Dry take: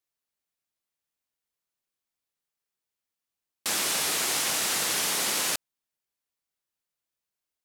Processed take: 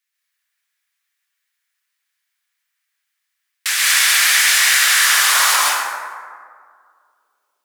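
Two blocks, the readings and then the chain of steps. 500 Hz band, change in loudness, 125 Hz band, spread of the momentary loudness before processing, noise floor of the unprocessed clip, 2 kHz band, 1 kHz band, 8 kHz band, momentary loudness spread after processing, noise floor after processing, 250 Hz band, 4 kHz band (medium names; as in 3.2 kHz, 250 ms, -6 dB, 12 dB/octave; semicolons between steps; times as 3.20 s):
+0.5 dB, +13.5 dB, under -20 dB, 4 LU, under -85 dBFS, +18.5 dB, +15.0 dB, +11.5 dB, 14 LU, -76 dBFS, under -10 dB, +13.5 dB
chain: modulation noise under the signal 18 dB; high-pass sweep 1.8 kHz -> 440 Hz, 4.77–6.46 s; plate-style reverb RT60 2 s, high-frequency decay 0.4×, pre-delay 115 ms, DRR -5.5 dB; trim +7 dB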